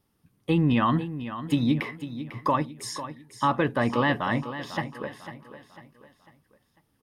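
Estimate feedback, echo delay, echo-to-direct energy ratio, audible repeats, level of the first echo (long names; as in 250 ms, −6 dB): 41%, 498 ms, −11.0 dB, 3, −12.0 dB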